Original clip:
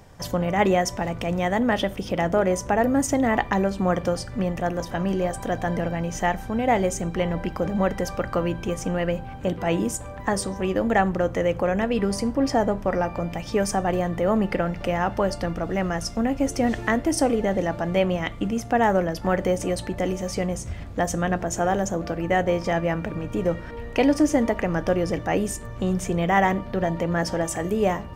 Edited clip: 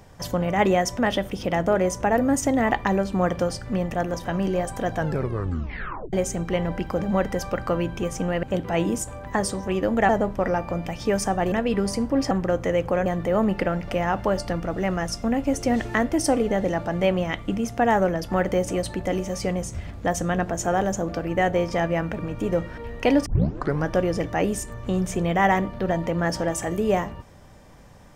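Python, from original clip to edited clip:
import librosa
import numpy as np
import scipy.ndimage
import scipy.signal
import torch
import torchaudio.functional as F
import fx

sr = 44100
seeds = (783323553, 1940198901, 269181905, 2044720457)

y = fx.edit(x, sr, fx.cut(start_s=0.99, length_s=0.66),
    fx.tape_stop(start_s=5.6, length_s=1.19),
    fx.cut(start_s=9.09, length_s=0.27),
    fx.swap(start_s=11.02, length_s=0.75, other_s=12.56, other_length_s=1.43),
    fx.tape_start(start_s=24.19, length_s=0.59), tone=tone)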